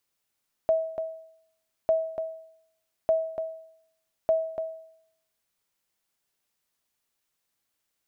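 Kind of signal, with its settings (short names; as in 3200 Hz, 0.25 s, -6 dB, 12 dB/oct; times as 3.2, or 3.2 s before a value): sonar ping 646 Hz, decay 0.70 s, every 1.20 s, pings 4, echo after 0.29 s, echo -8 dB -16 dBFS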